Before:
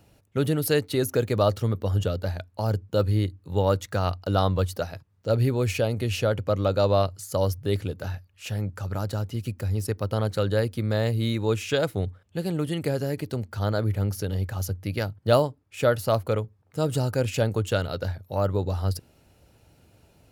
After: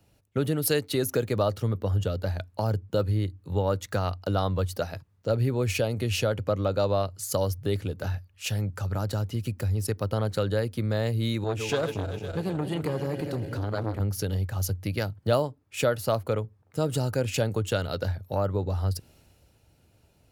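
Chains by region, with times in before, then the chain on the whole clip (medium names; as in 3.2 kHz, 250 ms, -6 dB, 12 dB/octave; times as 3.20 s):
11.44–14.00 s: backward echo that repeats 126 ms, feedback 73%, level -10 dB + treble shelf 6.3 kHz -4.5 dB + transformer saturation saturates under 590 Hz
whole clip: compression 2.5:1, threshold -32 dBFS; three bands expanded up and down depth 40%; trim +5.5 dB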